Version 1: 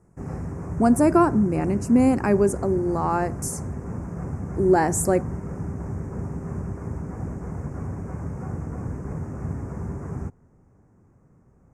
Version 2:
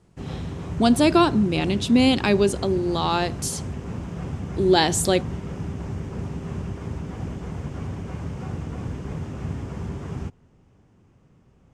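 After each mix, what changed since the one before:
master: remove Butterworth band-stop 3500 Hz, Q 0.69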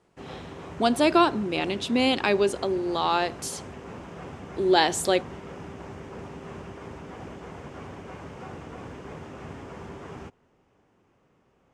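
master: add tone controls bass -15 dB, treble -6 dB

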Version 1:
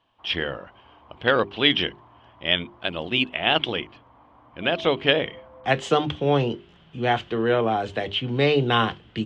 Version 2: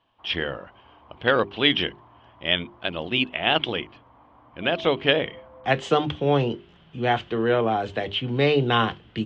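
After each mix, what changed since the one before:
master: add air absorption 51 m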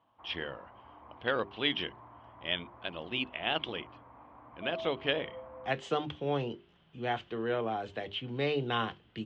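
speech -10.5 dB; master: add low shelf 160 Hz -3.5 dB

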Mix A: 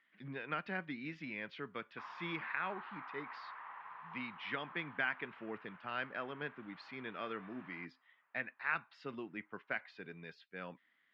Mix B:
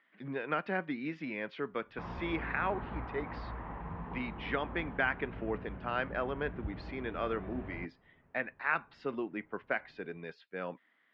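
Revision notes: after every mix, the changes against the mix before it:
background: remove resonant high-pass 1100 Hz, resonance Q 1.9; master: add bell 510 Hz +10 dB 2.9 oct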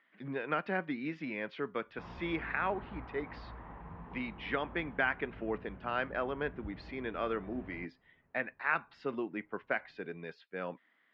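background -6.0 dB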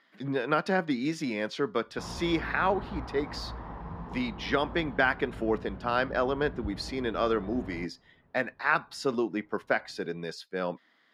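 master: remove ladder low-pass 3000 Hz, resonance 40%

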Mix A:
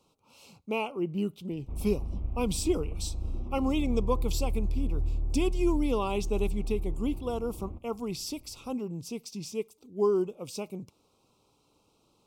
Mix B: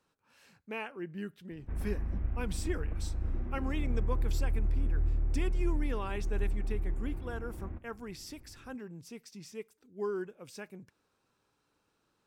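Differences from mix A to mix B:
speech -9.5 dB; master: remove Butterworth band-stop 1700 Hz, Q 1.2

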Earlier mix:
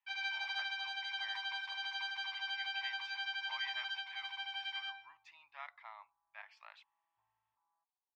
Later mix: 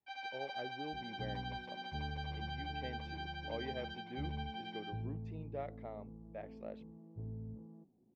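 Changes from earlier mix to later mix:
speech -9.5 dB; first sound -9.5 dB; master: remove elliptic high-pass 960 Hz, stop band 50 dB

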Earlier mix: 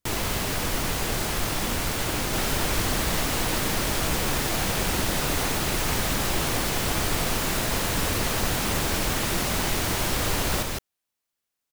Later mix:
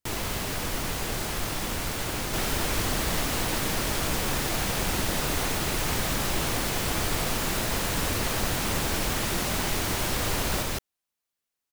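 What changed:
speech -7.0 dB; first sound -3.5 dB

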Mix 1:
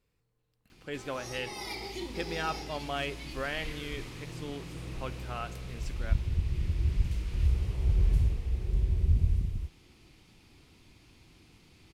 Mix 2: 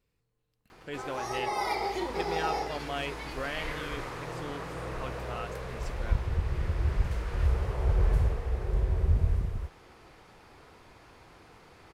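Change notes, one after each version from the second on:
background: add band shelf 880 Hz +14 dB 2.4 oct; reverb: off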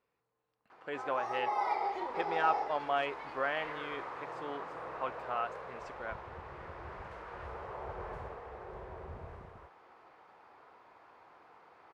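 speech +7.0 dB; master: add band-pass 940 Hz, Q 1.2

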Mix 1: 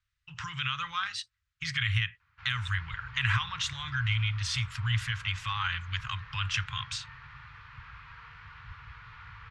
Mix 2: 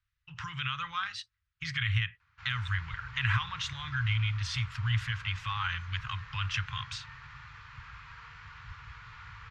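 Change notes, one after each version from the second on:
speech: add air absorption 220 m; master: remove LPF 4100 Hz 12 dB/oct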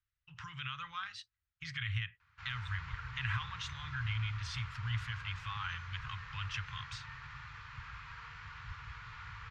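speech -7.5 dB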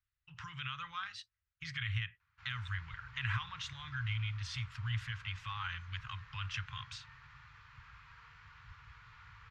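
background -8.5 dB

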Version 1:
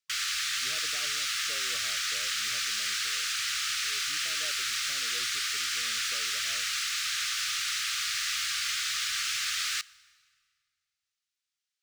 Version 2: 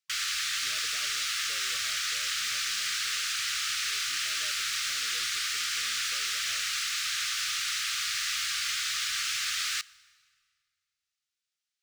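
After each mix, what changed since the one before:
speech -6.0 dB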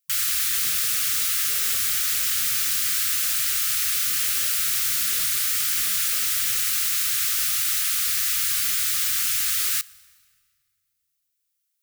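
master: remove three-band isolator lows -13 dB, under 440 Hz, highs -24 dB, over 6600 Hz

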